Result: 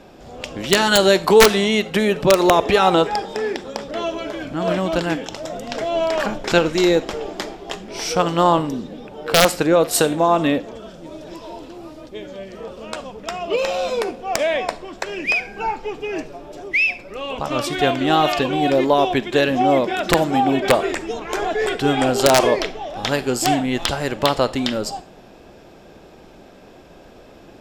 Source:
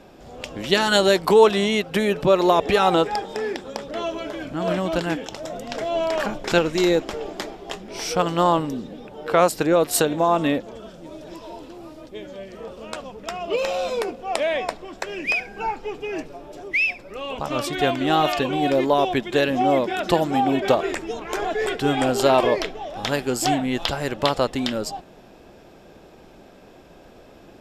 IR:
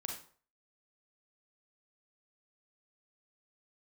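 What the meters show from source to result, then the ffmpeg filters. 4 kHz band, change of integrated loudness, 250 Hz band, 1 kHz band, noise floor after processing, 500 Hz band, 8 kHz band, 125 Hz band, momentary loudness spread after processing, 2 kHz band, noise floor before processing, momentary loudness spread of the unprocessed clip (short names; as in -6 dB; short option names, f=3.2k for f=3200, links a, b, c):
+4.0 dB, +3.0 dB, +3.0 dB, +2.5 dB, -45 dBFS, +2.5 dB, +5.5 dB, +3.0 dB, 18 LU, +4.0 dB, -48 dBFS, 18 LU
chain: -filter_complex "[0:a]aeval=exprs='(mod(1.88*val(0)+1,2)-1)/1.88':c=same,asplit=2[a][b];[b]aemphasis=mode=production:type=cd[c];[1:a]atrim=start_sample=2205,lowpass=7.6k[d];[c][d]afir=irnorm=-1:irlink=0,volume=-12dB[e];[a][e]amix=inputs=2:normalize=0,volume=1.5dB"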